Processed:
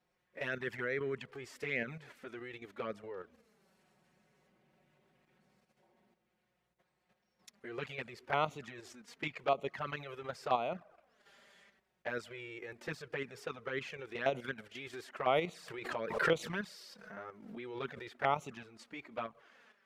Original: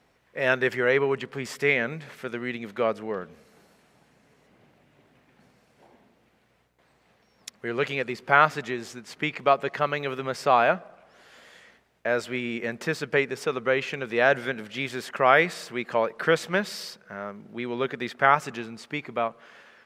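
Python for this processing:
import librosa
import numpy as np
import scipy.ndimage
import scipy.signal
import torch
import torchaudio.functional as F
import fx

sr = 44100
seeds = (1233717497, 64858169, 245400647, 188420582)

y = fx.level_steps(x, sr, step_db=9)
y = fx.env_flanger(y, sr, rest_ms=5.6, full_db=-21.5)
y = fx.pre_swell(y, sr, db_per_s=63.0, at=(15.68, 18.08))
y = F.gain(torch.from_numpy(y), -6.0).numpy()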